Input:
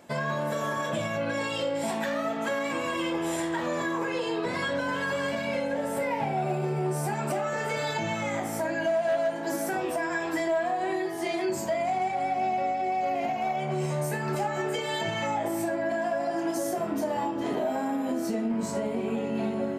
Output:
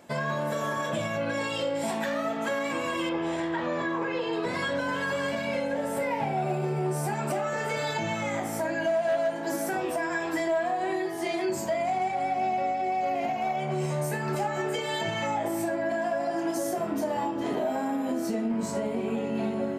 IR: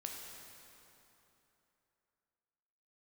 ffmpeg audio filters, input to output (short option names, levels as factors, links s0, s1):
-filter_complex "[0:a]asettb=1/sr,asplit=3[s0][s1][s2];[s0]atrim=end=3.094[s3];[s1]atrim=start=3.09:end=4.33,asetpts=PTS-STARTPTS,afade=t=in:d=0.004:c=qsin,afade=t=out:st=1.236:d=0.004:c=qsin,lowpass=3900[s4];[s2]atrim=start=4.326[s5];[s3][s4]acrossfade=d=0.004:c1=hsin:c2=qsin[s6];[s6][s5]acrossfade=d=0.004:c1=qsin:c2=hsin"